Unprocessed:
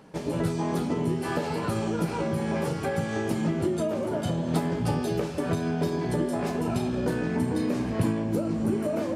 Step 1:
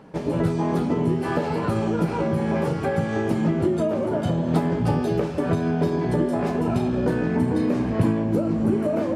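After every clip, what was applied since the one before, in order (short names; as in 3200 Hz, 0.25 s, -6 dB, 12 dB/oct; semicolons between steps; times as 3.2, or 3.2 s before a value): high shelf 3400 Hz -11 dB; gain +5 dB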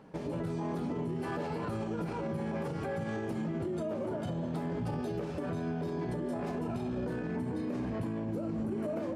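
limiter -20 dBFS, peak gain reduction 10 dB; gain -7.5 dB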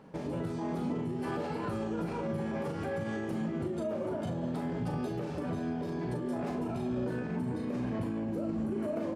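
doubler 40 ms -6.5 dB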